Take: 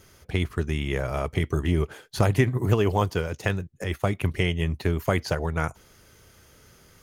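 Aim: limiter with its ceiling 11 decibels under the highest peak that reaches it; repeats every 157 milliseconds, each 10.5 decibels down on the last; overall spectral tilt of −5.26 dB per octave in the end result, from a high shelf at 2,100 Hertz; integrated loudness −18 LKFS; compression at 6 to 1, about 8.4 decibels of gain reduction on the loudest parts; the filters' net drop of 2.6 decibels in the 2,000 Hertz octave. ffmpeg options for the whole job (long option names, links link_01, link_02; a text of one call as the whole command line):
ffmpeg -i in.wav -af "equalizer=frequency=2000:width_type=o:gain=-7.5,highshelf=frequency=2100:gain=7.5,acompressor=threshold=-24dB:ratio=6,alimiter=limit=-21.5dB:level=0:latency=1,aecho=1:1:157|314|471:0.299|0.0896|0.0269,volume=15.5dB" out.wav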